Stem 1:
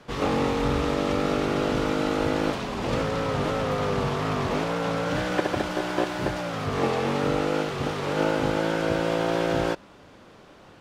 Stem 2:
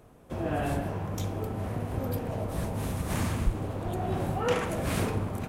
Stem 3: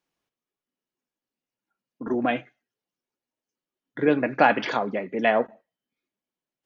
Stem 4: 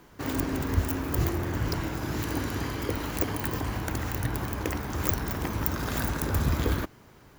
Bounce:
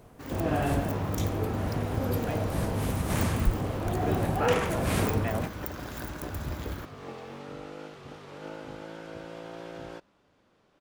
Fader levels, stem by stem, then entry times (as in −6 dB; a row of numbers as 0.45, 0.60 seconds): −17.0, +2.0, −15.0, −9.5 decibels; 0.25, 0.00, 0.00, 0.00 seconds